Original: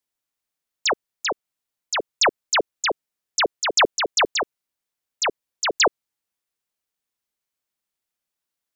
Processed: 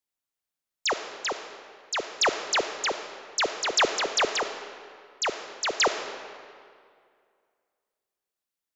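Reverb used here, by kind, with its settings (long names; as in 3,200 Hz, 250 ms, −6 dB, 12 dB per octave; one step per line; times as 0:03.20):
comb and all-pass reverb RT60 2.2 s, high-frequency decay 0.75×, pre-delay 0 ms, DRR 7.5 dB
level −5 dB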